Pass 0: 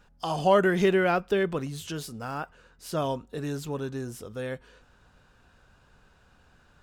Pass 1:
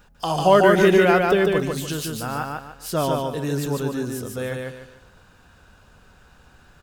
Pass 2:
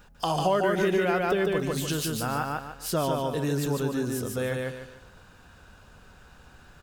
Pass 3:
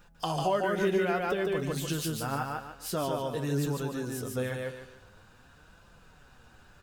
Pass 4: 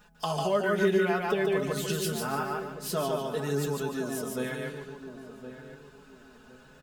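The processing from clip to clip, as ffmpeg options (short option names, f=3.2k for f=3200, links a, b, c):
-filter_complex "[0:a]highshelf=f=12k:g=10.5,asplit=2[a][b];[b]aecho=0:1:147|294|441|588:0.708|0.227|0.0725|0.0232[c];[a][c]amix=inputs=2:normalize=0,volume=5.5dB"
-af "acompressor=threshold=-24dB:ratio=3"
-af "flanger=delay=5.8:depth=4.5:regen=51:speed=0.51:shape=sinusoidal"
-filter_complex "[0:a]lowshelf=f=67:g=-11,aecho=1:1:4.7:0.72,asplit=2[a][b];[b]adelay=1064,lowpass=f=950:p=1,volume=-10dB,asplit=2[c][d];[d]adelay=1064,lowpass=f=950:p=1,volume=0.29,asplit=2[e][f];[f]adelay=1064,lowpass=f=950:p=1,volume=0.29[g];[a][c][e][g]amix=inputs=4:normalize=0"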